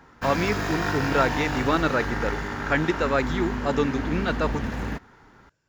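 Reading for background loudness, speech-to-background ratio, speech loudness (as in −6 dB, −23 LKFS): −29.0 LKFS, 3.0 dB, −26.0 LKFS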